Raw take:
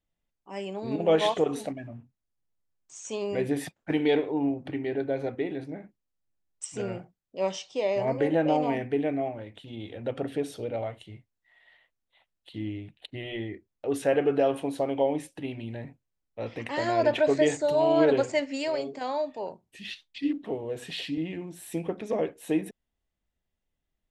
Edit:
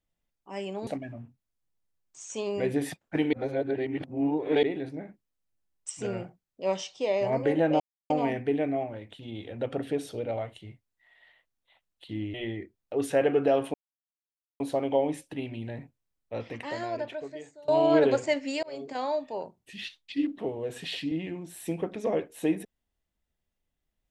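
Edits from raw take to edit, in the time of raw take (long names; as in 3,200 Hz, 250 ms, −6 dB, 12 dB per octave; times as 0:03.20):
0:00.87–0:01.62: remove
0:04.08–0:05.38: reverse
0:08.55: splice in silence 0.30 s
0:12.79–0:13.26: remove
0:14.66: splice in silence 0.86 s
0:16.41–0:17.74: fade out quadratic, to −24 dB
0:18.69–0:18.94: fade in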